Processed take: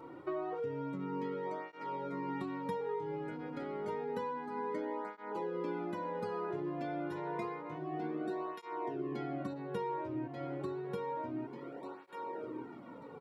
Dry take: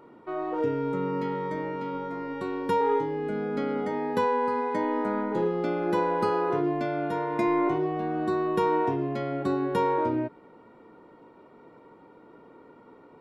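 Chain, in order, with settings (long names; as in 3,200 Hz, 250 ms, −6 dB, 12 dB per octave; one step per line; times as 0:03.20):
repeating echo 1,189 ms, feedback 25%, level −9 dB
downward compressor 8 to 1, threshold −38 dBFS, peak gain reduction 18 dB
through-zero flanger with one copy inverted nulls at 0.29 Hz, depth 5 ms
level +4.5 dB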